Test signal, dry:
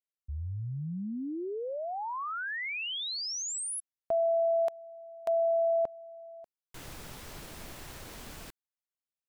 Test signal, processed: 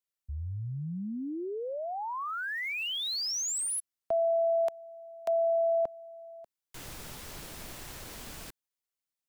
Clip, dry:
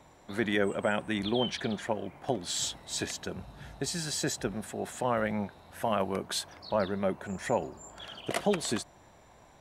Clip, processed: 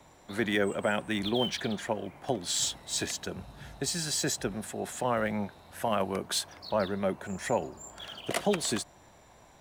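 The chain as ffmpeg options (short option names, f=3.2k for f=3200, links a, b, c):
-filter_complex "[0:a]highshelf=f=3.4k:g=4,acrossover=split=290|890|1800[a][b][c][d];[d]acrusher=bits=5:mode=log:mix=0:aa=0.000001[e];[a][b][c][e]amix=inputs=4:normalize=0"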